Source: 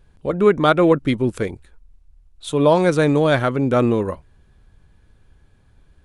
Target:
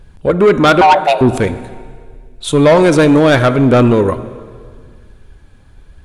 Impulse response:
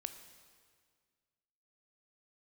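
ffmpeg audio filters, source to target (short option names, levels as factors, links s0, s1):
-filter_complex "[0:a]asettb=1/sr,asplit=3[s0][s1][s2];[s0]atrim=end=0.814[s3];[s1]atrim=start=0.81:end=1.21,asetpts=PTS-STARTPTS,afade=t=in:d=0.004:c=qsin,afade=t=out:st=0.396:d=0.004:c=qsin,afreqshift=430[s4];[s2]atrim=start=1.206[s5];[s3][s4]acrossfade=d=0.004:c1=hsin:c2=qsin[s6];[s6][s5]acrossfade=d=0.004:c1=qsin:c2=hsin,aphaser=in_gain=1:out_gain=1:delay=4.1:decay=0.25:speed=0.81:type=triangular,asplit=2[s7][s8];[1:a]atrim=start_sample=2205[s9];[s8][s9]afir=irnorm=-1:irlink=0,volume=1.68[s10];[s7][s10]amix=inputs=2:normalize=0,asoftclip=type=tanh:threshold=0.447,volume=1.5"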